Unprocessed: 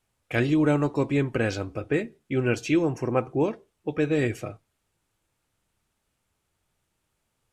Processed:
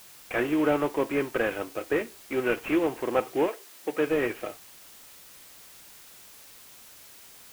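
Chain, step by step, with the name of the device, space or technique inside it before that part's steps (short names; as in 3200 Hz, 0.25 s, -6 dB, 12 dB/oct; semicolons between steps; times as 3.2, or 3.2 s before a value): army field radio (BPF 380–3300 Hz; CVSD 16 kbps; white noise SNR 20 dB); 3.47–4.06 HPF 410 Hz -> 110 Hz 24 dB/oct; gain +2.5 dB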